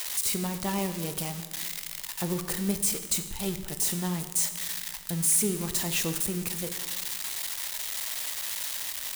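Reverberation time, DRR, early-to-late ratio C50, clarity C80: 1.5 s, 8.0 dB, 10.0 dB, 11.0 dB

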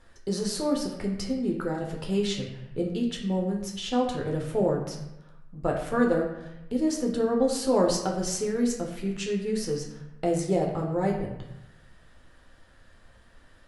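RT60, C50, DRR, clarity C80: 0.90 s, 5.0 dB, -0.5 dB, 7.5 dB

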